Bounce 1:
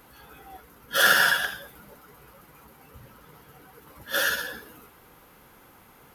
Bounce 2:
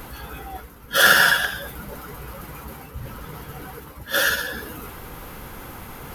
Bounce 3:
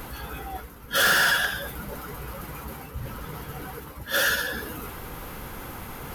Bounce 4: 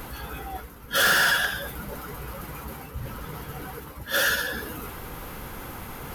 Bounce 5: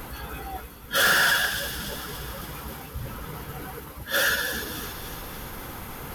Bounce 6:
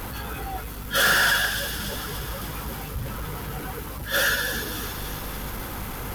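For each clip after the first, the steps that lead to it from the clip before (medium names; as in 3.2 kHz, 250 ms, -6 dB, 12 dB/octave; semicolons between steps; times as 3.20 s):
bass shelf 100 Hz +12 dB; reverse; upward compressor, threshold -31 dBFS; reverse; trim +4.5 dB
saturation -16.5 dBFS, distortion -8 dB
no audible change
feedback echo behind a high-pass 287 ms, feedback 60%, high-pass 3 kHz, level -7 dB
jump at every zero crossing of -36.5 dBFS; hum 50 Hz, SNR 11 dB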